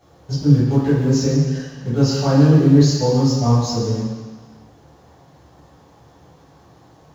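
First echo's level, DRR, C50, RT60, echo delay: no echo, -11.0 dB, -0.5 dB, 1.5 s, no echo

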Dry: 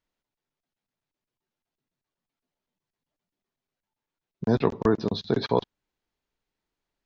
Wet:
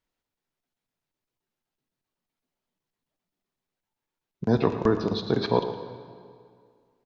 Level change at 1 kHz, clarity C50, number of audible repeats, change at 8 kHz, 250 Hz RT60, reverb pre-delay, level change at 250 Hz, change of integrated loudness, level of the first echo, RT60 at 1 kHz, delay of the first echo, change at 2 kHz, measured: +1.0 dB, 8.0 dB, 1, no reading, 2.1 s, 3 ms, +0.5 dB, +0.5 dB, -12.5 dB, 2.1 s, 114 ms, +0.5 dB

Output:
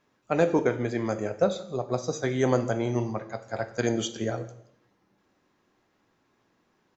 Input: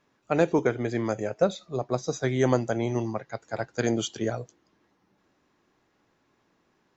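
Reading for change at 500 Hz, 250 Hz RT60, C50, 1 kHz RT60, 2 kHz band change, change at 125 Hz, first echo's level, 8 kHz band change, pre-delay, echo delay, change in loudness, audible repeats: 0.0 dB, 0.75 s, 13.0 dB, 0.65 s, -0.5 dB, -0.5 dB, -22.0 dB, no reading, 3 ms, 166 ms, -0.5 dB, 1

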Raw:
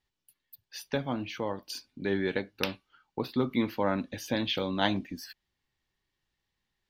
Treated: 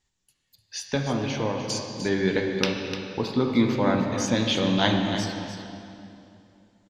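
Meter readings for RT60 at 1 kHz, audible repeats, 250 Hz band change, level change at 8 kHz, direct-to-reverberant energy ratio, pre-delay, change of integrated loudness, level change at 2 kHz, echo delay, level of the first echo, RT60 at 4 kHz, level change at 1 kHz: 2.6 s, 1, +7.5 dB, +12.5 dB, 1.5 dB, 10 ms, +6.5 dB, +6.0 dB, 300 ms, -10.5 dB, 2.3 s, +5.5 dB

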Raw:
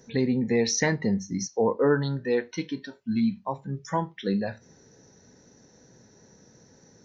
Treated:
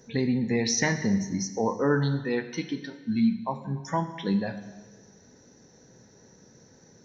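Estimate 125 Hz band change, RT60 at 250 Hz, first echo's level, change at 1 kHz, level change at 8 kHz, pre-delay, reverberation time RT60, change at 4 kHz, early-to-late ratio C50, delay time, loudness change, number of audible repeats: +1.0 dB, 1.4 s, no echo, 0.0 dB, no reading, 5 ms, 1.4 s, +0.5 dB, 11.0 dB, no echo, -0.5 dB, no echo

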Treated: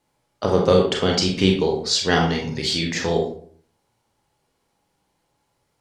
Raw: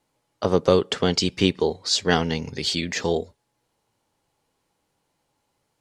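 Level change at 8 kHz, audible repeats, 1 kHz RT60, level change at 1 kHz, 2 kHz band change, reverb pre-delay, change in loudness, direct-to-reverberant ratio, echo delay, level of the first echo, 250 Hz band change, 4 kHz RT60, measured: +1.5 dB, no echo, 0.50 s, +3.0 dB, +2.5 dB, 27 ms, +2.5 dB, 0.5 dB, no echo, no echo, +3.0 dB, 0.35 s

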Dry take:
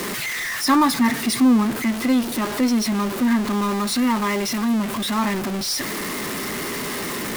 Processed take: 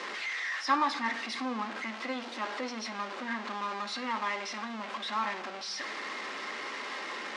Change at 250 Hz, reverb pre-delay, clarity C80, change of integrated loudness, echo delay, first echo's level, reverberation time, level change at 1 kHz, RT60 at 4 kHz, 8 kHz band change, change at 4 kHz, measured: -21.5 dB, 4 ms, 17.0 dB, -13.0 dB, no echo, no echo, 0.75 s, -7.5 dB, 0.60 s, -19.5 dB, -11.0 dB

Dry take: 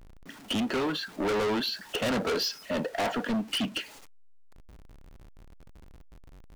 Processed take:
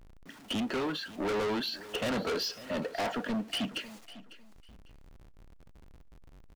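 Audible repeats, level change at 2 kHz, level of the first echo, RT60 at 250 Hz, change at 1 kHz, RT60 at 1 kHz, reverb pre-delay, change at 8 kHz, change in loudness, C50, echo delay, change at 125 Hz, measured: 2, -3.5 dB, -17.0 dB, no reverb, -3.5 dB, no reverb, no reverb, -4.5 dB, -3.5 dB, no reverb, 550 ms, -3.5 dB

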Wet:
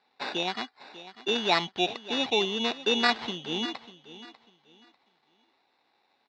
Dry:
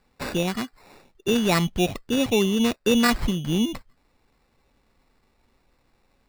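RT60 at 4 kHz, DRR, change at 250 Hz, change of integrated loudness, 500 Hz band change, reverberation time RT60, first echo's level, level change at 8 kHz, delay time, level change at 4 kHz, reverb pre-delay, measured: no reverb, no reverb, -11.5 dB, -4.5 dB, -5.5 dB, no reverb, -16.0 dB, -11.5 dB, 595 ms, +2.0 dB, no reverb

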